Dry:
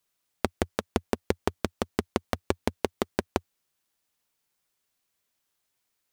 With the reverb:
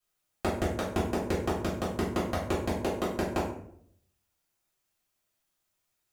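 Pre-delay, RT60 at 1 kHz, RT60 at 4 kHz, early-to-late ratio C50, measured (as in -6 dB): 3 ms, 0.60 s, 0.40 s, 4.5 dB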